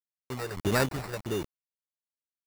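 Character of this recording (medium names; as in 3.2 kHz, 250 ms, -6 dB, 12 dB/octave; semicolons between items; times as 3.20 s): a quantiser's noise floor 6-bit, dither none; random-step tremolo; phasing stages 6, 1.6 Hz, lowest notch 220–4100 Hz; aliases and images of a low sample rate 3.2 kHz, jitter 0%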